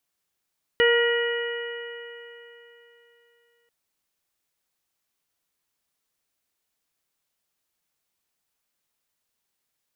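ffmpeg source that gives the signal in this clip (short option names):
-f lavfi -i "aevalsrc='0.141*pow(10,-3*t/3.34)*sin(2*PI*470.47*t)+0.0224*pow(10,-3*t/3.34)*sin(2*PI*943.75*t)+0.0473*pow(10,-3*t/3.34)*sin(2*PI*1422.63*t)+0.1*pow(10,-3*t/3.34)*sin(2*PI*1909.84*t)+0.0158*pow(10,-3*t/3.34)*sin(2*PI*2408.03*t)+0.0596*pow(10,-3*t/3.34)*sin(2*PI*2919.76*t)':d=2.89:s=44100"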